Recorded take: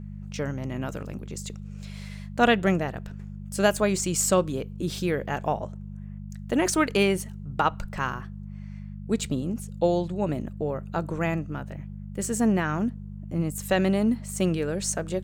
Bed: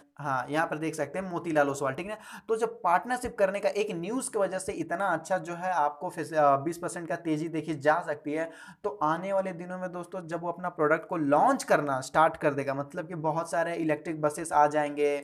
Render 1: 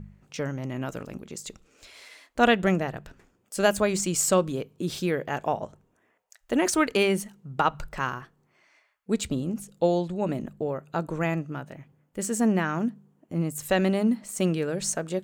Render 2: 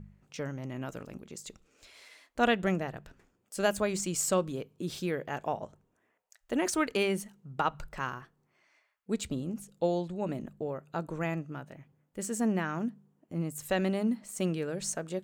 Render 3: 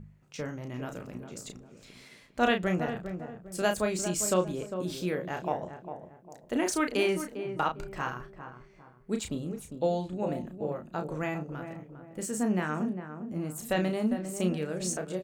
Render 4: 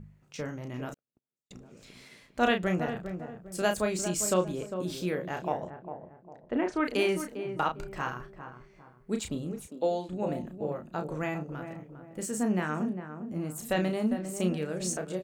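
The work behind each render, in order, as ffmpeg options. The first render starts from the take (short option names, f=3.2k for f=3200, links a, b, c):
-af "bandreject=f=50:t=h:w=4,bandreject=f=100:t=h:w=4,bandreject=f=150:t=h:w=4,bandreject=f=200:t=h:w=4"
-af "volume=-6dB"
-filter_complex "[0:a]asplit=2[a][b];[b]adelay=33,volume=-6.5dB[c];[a][c]amix=inputs=2:normalize=0,asplit=2[d][e];[e]adelay=402,lowpass=f=1k:p=1,volume=-8dB,asplit=2[f][g];[g]adelay=402,lowpass=f=1k:p=1,volume=0.4,asplit=2[h][i];[i]adelay=402,lowpass=f=1k:p=1,volume=0.4,asplit=2[j][k];[k]adelay=402,lowpass=f=1k:p=1,volume=0.4,asplit=2[l][m];[m]adelay=402,lowpass=f=1k:p=1,volume=0.4[n];[f][h][j][l][n]amix=inputs=5:normalize=0[o];[d][o]amix=inputs=2:normalize=0"
-filter_complex "[0:a]asettb=1/sr,asplit=3[a][b][c];[a]atrim=end=0.944[d];[b]atrim=start=0.94:end=1.51,asetpts=PTS-STARTPTS,afade=t=in:d=0.004:c=qsin,afade=t=out:st=0.566:d=0.004:c=qsin,agate=range=-57dB:threshold=-34dB:ratio=16:release=100:detection=peak[e];[c]atrim=start=1.506[f];[d][e]acrossfade=d=0.004:c1=hsin:c2=qsin[g];[g][f]acrossfade=d=0.004:c1=qsin:c2=hsin,asplit=3[h][i][j];[h]afade=t=out:st=5.69:d=0.02[k];[i]lowpass=2.1k,afade=t=in:st=5.69:d=0.02,afade=t=out:st=6.84:d=0.02[l];[j]afade=t=in:st=6.84:d=0.02[m];[k][l][m]amix=inputs=3:normalize=0,asettb=1/sr,asplit=3[n][o][p];[n]atrim=end=9.674[q];[o]atrim=start=9.67:end=10.09,asetpts=PTS-STARTPTS,afade=t=in:d=0.004:c=qsin,afade=t=out:st=0.416:d=0.004:c=qsin,highpass=f=220:w=0.5412,highpass=f=220:w=1.3066[r];[p]atrim=start=10.086[s];[q][r]acrossfade=d=0.004:c1=hsin:c2=qsin[t];[t][s]acrossfade=d=0.004:c1=qsin:c2=hsin"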